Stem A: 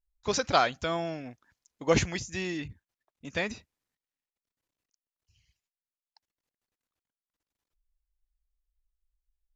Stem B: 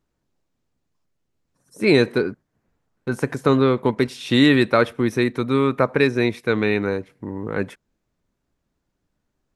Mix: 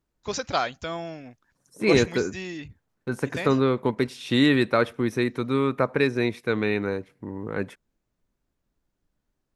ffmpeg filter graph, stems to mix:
-filter_complex "[0:a]volume=0.841[s0];[1:a]volume=0.596[s1];[s0][s1]amix=inputs=2:normalize=0"

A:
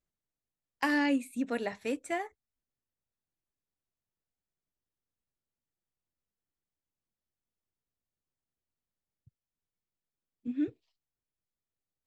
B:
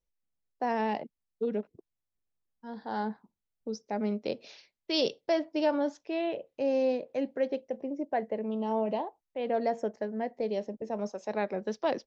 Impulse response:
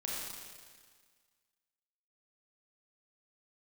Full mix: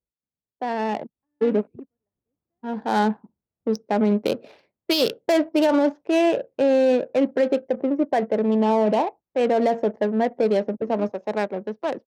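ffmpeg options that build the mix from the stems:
-filter_complex "[0:a]adelay=400,volume=0.376[s0];[1:a]dynaudnorm=f=230:g=11:m=3.55,highshelf=f=5300:g=6.5,volume=1.26,asplit=2[s1][s2];[s2]apad=whole_len=549540[s3];[s0][s3]sidechaingate=range=0.01:threshold=0.00891:ratio=16:detection=peak[s4];[s4][s1]amix=inputs=2:normalize=0,adynamicsmooth=sensitivity=2:basefreq=740,highpass=73,alimiter=limit=0.266:level=0:latency=1:release=43"

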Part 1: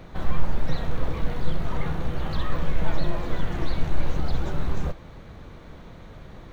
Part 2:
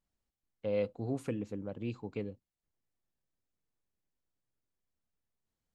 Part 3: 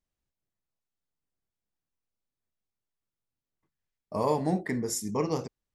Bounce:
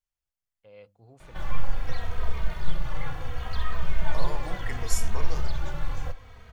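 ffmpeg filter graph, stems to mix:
-filter_complex "[0:a]asplit=2[s0][s1];[s1]adelay=2.9,afreqshift=-0.7[s2];[s0][s2]amix=inputs=2:normalize=1,adelay=1200,volume=0.75[s3];[1:a]bandreject=f=49.56:t=h:w=4,bandreject=f=99.12:t=h:w=4,bandreject=f=148.68:t=h:w=4,bandreject=f=198.24:t=h:w=4,bandreject=f=247.8:t=h:w=4,bandreject=f=297.36:t=h:w=4,volume=0.211[s4];[2:a]acompressor=threshold=0.0355:ratio=6,volume=0.668[s5];[s3][s4][s5]amix=inputs=3:normalize=0,dynaudnorm=f=220:g=7:m=1.78,equalizer=f=260:w=0.69:g=-14,bandreject=f=3900:w=11"

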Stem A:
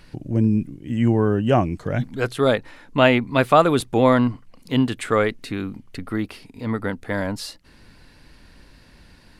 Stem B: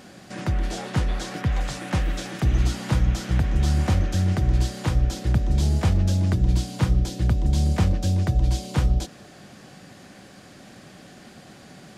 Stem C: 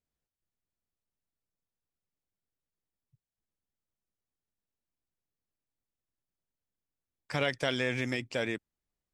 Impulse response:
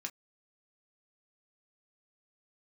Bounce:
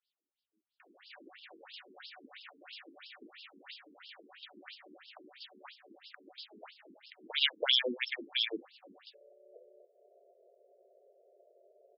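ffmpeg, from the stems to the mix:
-filter_complex "[0:a]bandreject=f=60:t=h:w=6,bandreject=f=120:t=h:w=6,bandreject=f=180:t=h:w=6,bandreject=f=240:t=h:w=6,bandreject=f=300:t=h:w=6,bandreject=f=360:t=h:w=6,adynamicequalizer=threshold=0.0178:dfrequency=330:dqfactor=3:tfrequency=330:tqfactor=3:attack=5:release=100:ratio=0.375:range=3.5:mode=boostabove:tftype=bell,dynaudnorm=f=190:g=11:m=5.01,volume=0.631[s0];[1:a]crystalizer=i=9:c=0,adelay=800,volume=0.299[s1];[2:a]highshelf=f=2600:t=q:w=1.5:g=10.5,volume=1.33,asplit=2[s2][s3];[s3]apad=whole_len=414467[s4];[s0][s4]sidechaingate=range=0.00224:threshold=0.00112:ratio=16:detection=peak[s5];[s5][s1]amix=inputs=2:normalize=0,acrossover=split=160 5200:gain=0.224 1 0.224[s6][s7][s8];[s6][s7][s8]amix=inputs=3:normalize=0,acompressor=threshold=0.00398:ratio=2,volume=1[s9];[s2][s9]amix=inputs=2:normalize=0,afftfilt=real='re*between(b*sr/1024,300*pow(3900/300,0.5+0.5*sin(2*PI*3*pts/sr))/1.41,300*pow(3900/300,0.5+0.5*sin(2*PI*3*pts/sr))*1.41)':imag='im*between(b*sr/1024,300*pow(3900/300,0.5+0.5*sin(2*PI*3*pts/sr))/1.41,300*pow(3900/300,0.5+0.5*sin(2*PI*3*pts/sr))*1.41)':win_size=1024:overlap=0.75"

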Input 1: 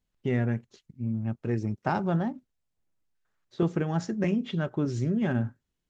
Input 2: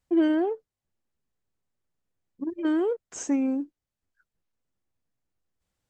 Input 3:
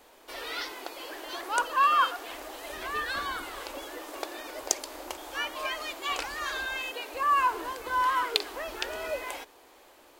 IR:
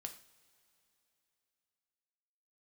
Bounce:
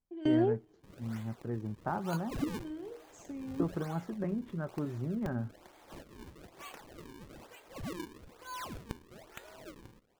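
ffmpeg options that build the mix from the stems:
-filter_complex "[0:a]highshelf=f=1900:t=q:w=1.5:g=-13.5,volume=0.376,asplit=2[s0][s1];[1:a]equalizer=f=1300:t=o:w=0.64:g=-12.5,acrossover=split=810|1900[s2][s3][s4];[s2]acompressor=threshold=0.0562:ratio=4[s5];[s3]acompressor=threshold=0.00398:ratio=4[s6];[s4]acompressor=threshold=0.00891:ratio=4[s7];[s5][s6][s7]amix=inputs=3:normalize=0,volume=0.944,asplit=2[s8][s9];[s9]volume=0.237[s10];[2:a]acrusher=samples=38:mix=1:aa=0.000001:lfo=1:lforange=60.8:lforate=1.1,adelay=550,volume=0.15[s11];[s1]apad=whole_len=260002[s12];[s8][s12]sidechaingate=range=0.0224:threshold=0.00158:ratio=16:detection=peak[s13];[3:a]atrim=start_sample=2205[s14];[s10][s14]afir=irnorm=-1:irlink=0[s15];[s0][s13][s11][s15]amix=inputs=4:normalize=0"

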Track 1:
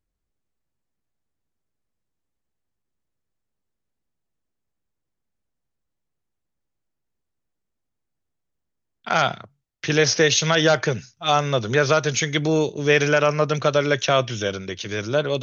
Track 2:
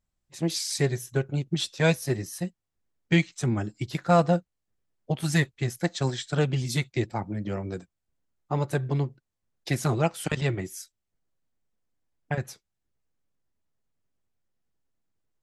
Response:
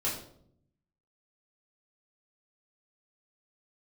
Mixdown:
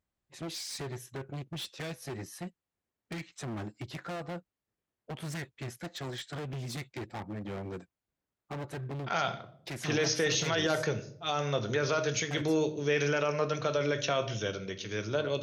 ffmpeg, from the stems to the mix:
-filter_complex "[0:a]volume=0.299,asplit=2[s0][s1];[s1]volume=0.224[s2];[1:a]bass=f=250:g=-5,treble=f=4000:g=-9,acompressor=threshold=0.0501:ratio=6,volume=56.2,asoftclip=hard,volume=0.0178,volume=0.944[s3];[2:a]atrim=start_sample=2205[s4];[s2][s4]afir=irnorm=-1:irlink=0[s5];[s0][s3][s5]amix=inputs=3:normalize=0,highpass=42,alimiter=limit=0.106:level=0:latency=1:release=17"

